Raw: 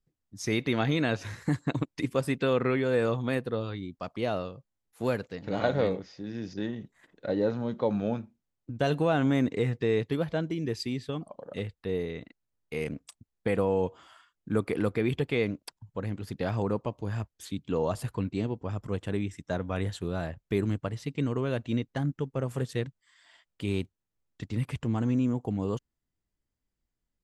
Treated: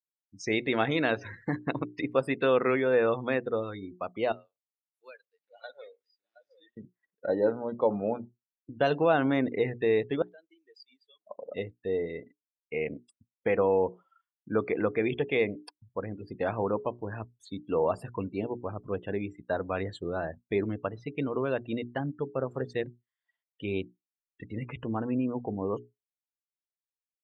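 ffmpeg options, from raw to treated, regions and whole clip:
-filter_complex "[0:a]asettb=1/sr,asplit=3[s0][s1][s2];[s0]atrim=end=4.324[s3];[s1]atrim=start=4.32:end=6.77,asetpts=PTS-STARTPTS,afade=t=in:d=0.004:c=qsin,afade=t=out:st=2.446:d=0.004:c=qsin,aderivative,aecho=1:1:719:0.316,atrim=end_sample=108045[s4];[s2]atrim=start=6.766[s5];[s3][s4]acrossfade=d=0.004:c1=hsin:c2=qsin[s6];[s6][s5]acrossfade=d=0.004:c1=qsin:c2=hsin,asettb=1/sr,asplit=3[s7][s8][s9];[s7]atrim=end=10.224[s10];[s8]atrim=start=10.22:end=11.27,asetpts=PTS-STARTPTS,afade=t=in:d=0.004:c=qsin,afade=t=out:st=1.046:d=0.004:c=qsin,aderivative,acompressor=threshold=0.00562:ratio=4:attack=3.2:release=140:knee=1:detection=peak[s11];[s9]atrim=start=11.266[s12];[s10][s11]acrossfade=d=0.004:c1=hsin:c2=qsin[s13];[s13][s12]acrossfade=d=0.004:c1=qsin:c2=hsin,bandreject=f=60:t=h:w=6,bandreject=f=120:t=h:w=6,bandreject=f=180:t=h:w=6,bandreject=f=240:t=h:w=6,bandreject=f=300:t=h:w=6,bandreject=f=360:t=h:w=6,bandreject=f=420:t=h:w=6,afftdn=nr=34:nf=-42,bass=f=250:g=-11,treble=f=4000:g=-8,volume=1.5"

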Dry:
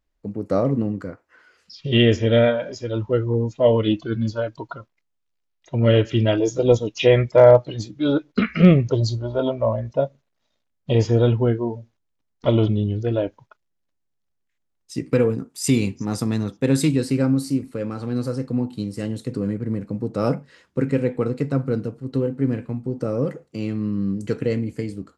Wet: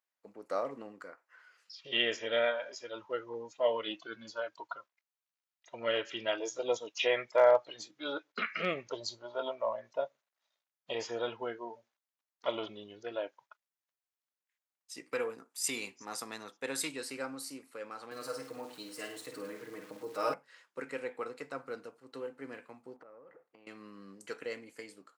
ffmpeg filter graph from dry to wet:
-filter_complex "[0:a]asettb=1/sr,asplit=3[s0][s1][s2];[s0]atrim=end=18.114[s3];[s1]atrim=start=18.11:end=20.34,asetpts=PTS-STARTPTS,afade=t=in:d=0.004:c=qsin,afade=t=out:st=2.226:d=0.004:c=qsin,aecho=1:1:6.5:0.99,atrim=end_sample=98343,aecho=1:1:52|104:0.422|0.251,atrim=end_sample=98343,aeval=exprs='val(0)*gte(abs(val(0)),0.00891)':c=same[s4];[s2]atrim=start=20.336[s5];[s3][s4]acrossfade=d=0.004:c1=hsin:c2=qsin[s6];[s6][s5]acrossfade=d=0.004:c1=qsin:c2=hsin,asettb=1/sr,asplit=3[s7][s8][s9];[s7]atrim=end=22.964[s10];[s8]atrim=start=22.96:end=23.67,asetpts=PTS-STARTPTS,afade=t=in:d=0.004:c=qsin,afade=t=out:st=0.706:d=0.004:c=qsin,lowpass=1700,acompressor=threshold=0.02:ratio=10:attack=3.2:release=140:knee=1:detection=peak[s11];[s9]atrim=start=23.666[s12];[s10][s11]acrossfade=d=0.004:c1=hsin:c2=qsin[s13];[s13][s12]acrossfade=d=0.004:c1=qsin:c2=hsin,highpass=930,equalizer=f=4300:t=o:w=2.4:g=-4,volume=0.668"

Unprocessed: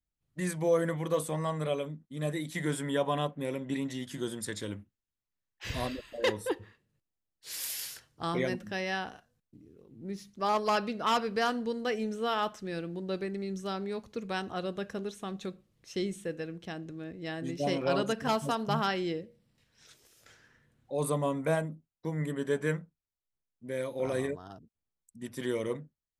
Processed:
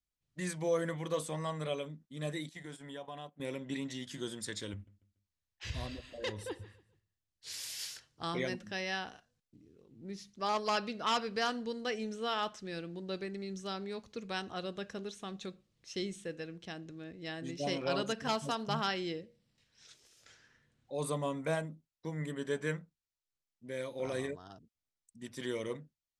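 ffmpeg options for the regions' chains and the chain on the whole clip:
-filter_complex "[0:a]asettb=1/sr,asplit=3[s0][s1][s2];[s0]atrim=end=2.494[s3];[s1]atrim=start=2.49:end=3.4,asetpts=PTS-STARTPTS,afade=t=in:d=0.004:c=qsin,afade=t=out:st=0.906:d=0.004:c=qsin,agate=range=0.224:threshold=0.0158:ratio=16:release=100:detection=peak,equalizer=f=750:t=o:w=0.38:g=6,acompressor=threshold=0.00501:ratio=2:attack=3.2:release=140:knee=1:detection=peak[s4];[s2]atrim=start=3.396[s5];[s3][s4]acrossfade=d=0.004:c1=hsin:c2=qsin[s6];[s6][s5]acrossfade=d=0.004:c1=qsin:c2=hsin,asettb=1/sr,asplit=3[s7][s8][s9];[s7]atrim=end=4.734[s10];[s8]atrim=start=4.73:end=7.8,asetpts=PTS-STARTPTS,afade=t=in:d=0.004:c=qsin,afade=t=out:st=3.066:d=0.004:c=qsin,equalizer=f=72:w=0.75:g=13.5,acompressor=threshold=0.01:ratio=1.5:attack=3.2:release=140:knee=1:detection=peak,aecho=1:1:143|286|429:0.119|0.0404|0.0137,atrim=end_sample=135387[s11];[s9]atrim=start=7.796[s12];[s10][s11]acrossfade=d=0.004:c1=hsin:c2=qsin[s13];[s13][s12]acrossfade=d=0.004:c1=qsin:c2=hsin,lowpass=6100,highshelf=f=3200:g=11,volume=0.531"

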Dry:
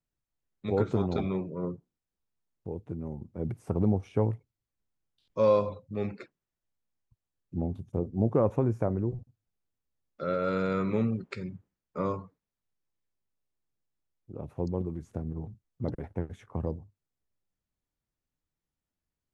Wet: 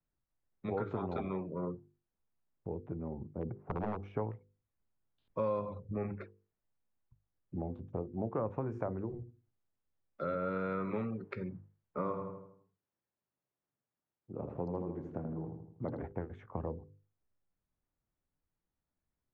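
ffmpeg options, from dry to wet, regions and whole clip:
-filter_complex "[0:a]asettb=1/sr,asplit=3[s0][s1][s2];[s0]atrim=end=3.354[s3];[s1]atrim=start=3.35:end=4.03,asetpts=PTS-STARTPTS,afade=t=in:d=0.004:c=qsin,afade=t=out:st=0.676:d=0.004:c=qsin,lowpass=1100,aeval=exprs='0.0944*(abs(mod(val(0)/0.0944+3,4)-2)-1)':c=same[s4];[s2]atrim=start=4.026[s5];[s3][s4]acrossfade=d=0.004:c1=hsin:c2=qsin[s6];[s6][s5]acrossfade=d=0.004:c1=qsin:c2=hsin,asettb=1/sr,asplit=3[s7][s8][s9];[s7]atrim=end=5.794[s10];[s8]atrim=start=5.79:end=6.21,asetpts=PTS-STARTPTS,afade=t=in:d=0.004:c=qsin,afade=t=out:st=0.416:d=0.004:c=qsin,asuperstop=centerf=4100:order=8:qfactor=1.1,aemphasis=mode=reproduction:type=bsi[s11];[s9]atrim=start=6.206[s12];[s10][s11]acrossfade=d=0.004:c1=hsin:c2=qsin[s13];[s13][s12]acrossfade=d=0.004:c1=qsin:c2=hsin,asettb=1/sr,asplit=3[s14][s15][s16];[s14]atrim=end=8.684[s17];[s15]atrim=start=8.68:end=10.35,asetpts=PTS-STARTPTS,afade=t=in:d=0.004:c=qsin,afade=t=out:st=1.666:d=0.004:c=qsin,bass=f=250:g=-1,treble=f=4000:g=10,bandreject=f=60:t=h:w=6,bandreject=f=120:t=h:w=6,bandreject=f=180:t=h:w=6,bandreject=f=240:t=h:w=6,bandreject=f=300:t=h:w=6,bandreject=f=360:t=h:w=6,bandreject=f=420:t=h:w=6,bandreject=f=480:t=h:w=6[s18];[s16]atrim=start=10.346[s19];[s17][s18]acrossfade=d=0.004:c1=hsin:c2=qsin[s20];[s20][s19]acrossfade=d=0.004:c1=qsin:c2=hsin,asettb=1/sr,asplit=3[s21][s22][s23];[s21]atrim=end=11.984[s24];[s22]atrim=start=11.98:end=16.02,asetpts=PTS-STARTPTS,afade=t=in:d=0.004:c=qsin,afade=t=out:st=4.036:d=0.004:c=qsin,highpass=120,asplit=2[s25][s26];[s26]adelay=80,lowpass=f=3400:p=1,volume=0.501,asplit=2[s27][s28];[s28]adelay=80,lowpass=f=3400:p=1,volume=0.47,asplit=2[s29][s30];[s30]adelay=80,lowpass=f=3400:p=1,volume=0.47,asplit=2[s31][s32];[s32]adelay=80,lowpass=f=3400:p=1,volume=0.47,asplit=2[s33][s34];[s34]adelay=80,lowpass=f=3400:p=1,volume=0.47,asplit=2[s35][s36];[s36]adelay=80,lowpass=f=3400:p=1,volume=0.47[s37];[s25][s27][s29][s31][s33][s35][s37]amix=inputs=7:normalize=0,atrim=end_sample=178164[s38];[s23]atrim=start=16.016[s39];[s24][s38]acrossfade=d=0.004:c1=hsin:c2=qsin[s40];[s40][s39]acrossfade=d=0.004:c1=qsin:c2=hsin,lowpass=1700,bandreject=f=50:t=h:w=6,bandreject=f=100:t=h:w=6,bandreject=f=150:t=h:w=6,bandreject=f=200:t=h:w=6,bandreject=f=250:t=h:w=6,bandreject=f=300:t=h:w=6,bandreject=f=350:t=h:w=6,bandreject=f=400:t=h:w=6,bandreject=f=450:t=h:w=6,bandreject=f=500:t=h:w=6,acrossover=split=300|790[s41][s42][s43];[s41]acompressor=threshold=0.00794:ratio=4[s44];[s42]acompressor=threshold=0.00794:ratio=4[s45];[s43]acompressor=threshold=0.00891:ratio=4[s46];[s44][s45][s46]amix=inputs=3:normalize=0,volume=1.19"

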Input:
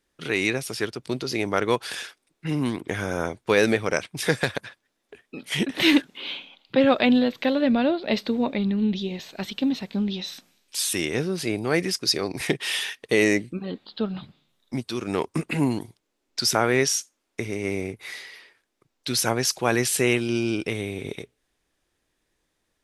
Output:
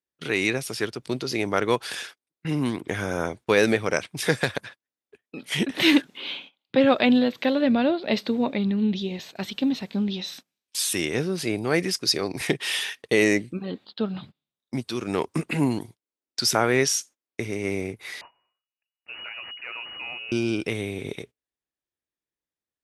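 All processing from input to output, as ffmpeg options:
-filter_complex "[0:a]asettb=1/sr,asplit=3[s0][s1][s2];[s0]atrim=end=18.214[s3];[s1]atrim=start=18.21:end=20.32,asetpts=PTS-STARTPTS,afade=t=in:d=0.004:c=qsin,afade=t=out:st=2.106:d=0.004:c=qsin,aeval=exprs='if(lt(val(0),0),0.251*val(0),val(0))':c=same,lowpass=f=2500:t=q:w=0.5098,lowpass=f=2500:t=q:w=0.6013,lowpass=f=2500:t=q:w=0.9,lowpass=f=2500:t=q:w=2.563,afreqshift=-2900,acompressor=threshold=0.01:ratio=2:attack=3.2:release=140:knee=1:detection=peak[s4];[s2]atrim=start=20.316[s5];[s3][s4]acrossfade=d=0.004:c1=hsin:c2=qsin[s6];[s6][s5]acrossfade=d=0.004:c1=qsin:c2=hsin,highpass=55,agate=range=0.0891:threshold=0.00708:ratio=16:detection=peak"

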